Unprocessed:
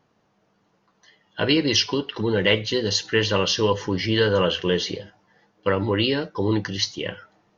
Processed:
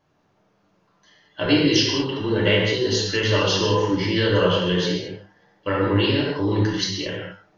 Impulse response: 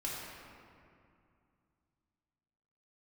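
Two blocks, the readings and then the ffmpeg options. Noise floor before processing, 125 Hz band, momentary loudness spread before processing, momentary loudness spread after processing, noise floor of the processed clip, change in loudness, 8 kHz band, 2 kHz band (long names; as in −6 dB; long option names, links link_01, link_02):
−67 dBFS, +4.0 dB, 8 LU, 10 LU, −64 dBFS, +1.5 dB, can't be measured, +1.0 dB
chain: -filter_complex "[1:a]atrim=start_sample=2205,afade=type=out:start_time=0.27:duration=0.01,atrim=end_sample=12348[link_01];[0:a][link_01]afir=irnorm=-1:irlink=0"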